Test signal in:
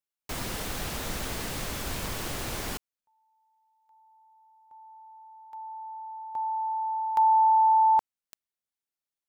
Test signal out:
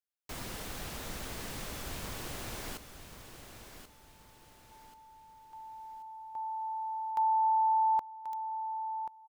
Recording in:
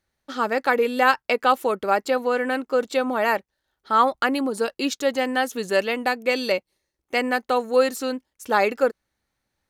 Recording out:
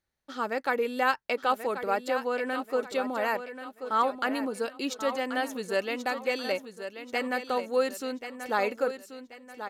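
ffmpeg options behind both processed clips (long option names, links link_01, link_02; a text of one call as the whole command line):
ffmpeg -i in.wav -af "aecho=1:1:1084|2168|3252|4336:0.316|0.12|0.0457|0.0174,volume=-7.5dB" out.wav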